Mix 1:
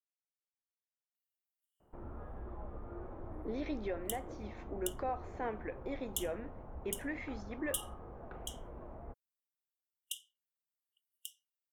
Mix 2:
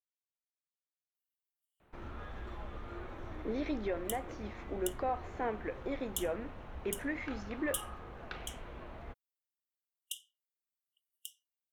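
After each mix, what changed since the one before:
speech +3.0 dB; first sound: remove Chebyshev low-pass 800 Hz, order 2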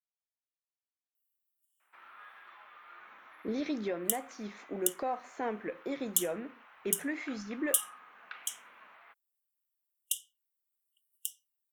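first sound: add Butterworth band-pass 1700 Hz, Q 1; master: add tone controls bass +6 dB, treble +11 dB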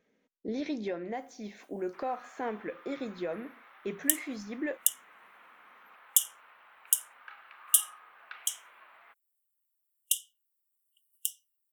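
speech: entry -3.00 s; second sound +5.0 dB

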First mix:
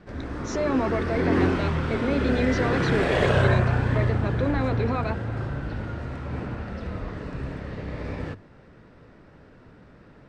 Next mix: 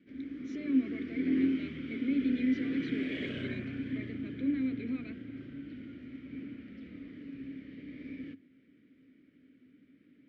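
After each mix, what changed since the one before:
master: add vowel filter i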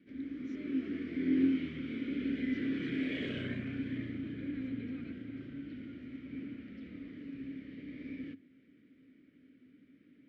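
speech -9.0 dB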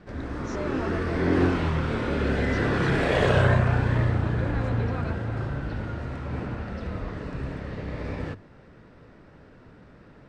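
master: remove vowel filter i

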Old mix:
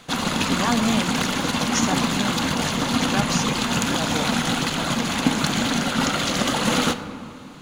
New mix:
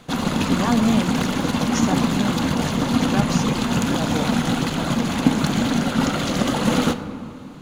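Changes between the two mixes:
background: add bell 13000 Hz +6 dB 0.22 oct; master: add tilt shelf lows +4.5 dB, about 810 Hz

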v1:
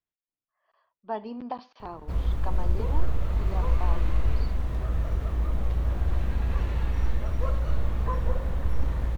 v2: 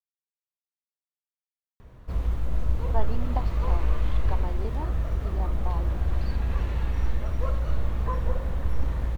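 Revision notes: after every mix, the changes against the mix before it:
speech: entry +1.85 s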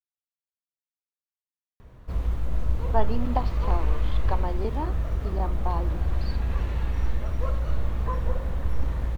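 speech +6.0 dB

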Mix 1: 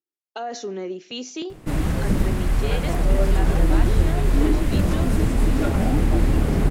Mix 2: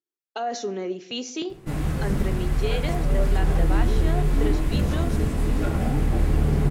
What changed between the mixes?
background -8.0 dB; reverb: on, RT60 0.85 s

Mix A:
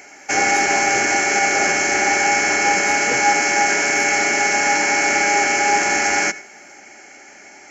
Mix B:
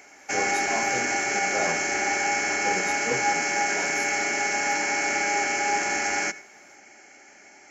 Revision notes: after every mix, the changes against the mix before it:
background -8.0 dB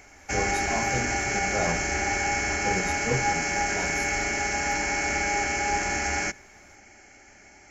background: send -11.5 dB; master: remove HPF 260 Hz 12 dB/oct

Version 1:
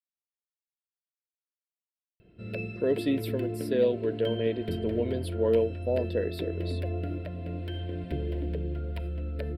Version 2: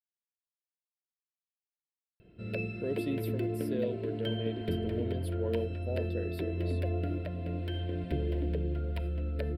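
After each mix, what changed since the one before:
speech: add graphic EQ 250/500/1000/2000/4000/8000 Hz -6/-7/-8/-9/-7/-5 dB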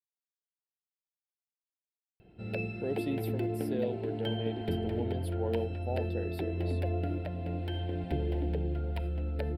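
master: remove Butterworth band-stop 810 Hz, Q 3.2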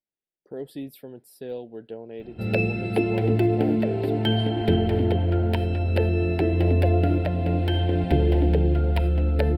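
speech: entry -2.30 s; background +12.0 dB

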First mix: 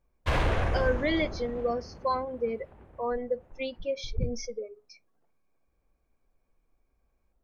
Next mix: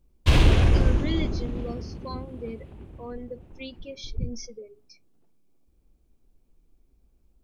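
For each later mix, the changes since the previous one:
background +10.5 dB; master: add band shelf 1000 Hz -11 dB 2.4 oct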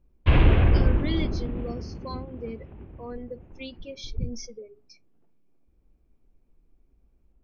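background: add LPF 2700 Hz 24 dB/oct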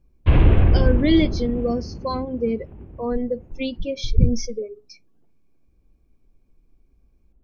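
speech +11.0 dB; master: add tilt shelf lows +3.5 dB, about 900 Hz

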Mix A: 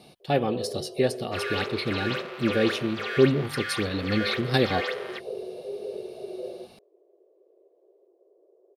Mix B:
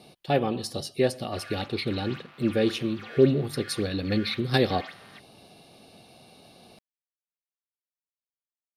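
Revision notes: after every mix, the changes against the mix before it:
first sound: muted; second sound -11.0 dB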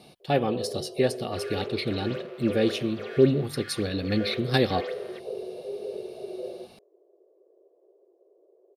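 first sound: unmuted

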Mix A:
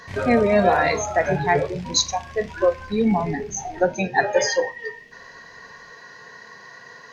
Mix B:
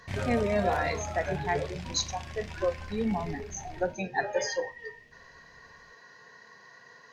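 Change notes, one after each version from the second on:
speech -10.0 dB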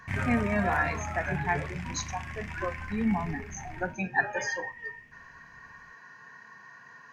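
speech: add Butterworth band-stop 2000 Hz, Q 6.3; master: add graphic EQ 125/250/500/1000/2000/4000 Hz +3/+4/-10/+4/+10/-11 dB

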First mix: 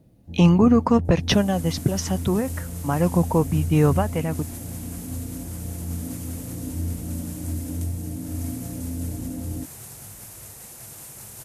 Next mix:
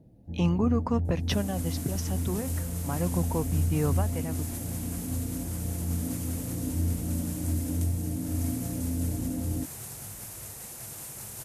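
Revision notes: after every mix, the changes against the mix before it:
speech -10.0 dB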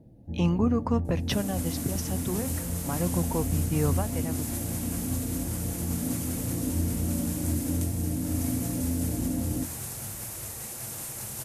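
reverb: on, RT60 0.45 s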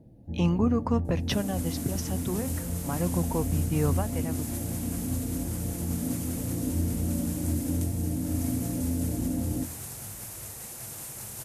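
second sound: send -11.5 dB

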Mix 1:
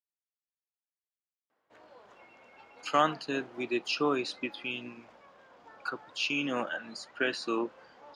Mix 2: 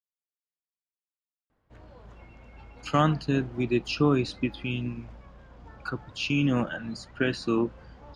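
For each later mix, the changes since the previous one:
master: remove HPF 450 Hz 12 dB/oct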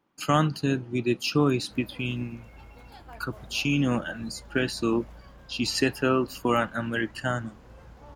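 speech: entry -2.65 s; master: remove air absorption 100 m

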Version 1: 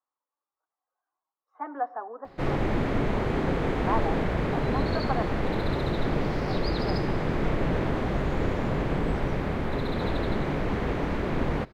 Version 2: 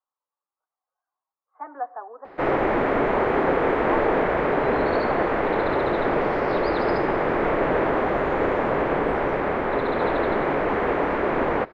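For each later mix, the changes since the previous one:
background +10.5 dB; master: add three-band isolator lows -18 dB, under 330 Hz, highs -19 dB, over 2400 Hz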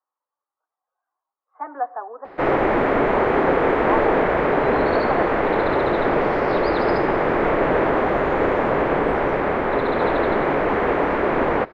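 speech +5.0 dB; background +3.0 dB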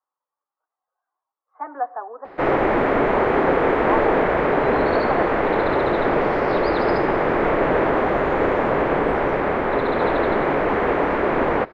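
none

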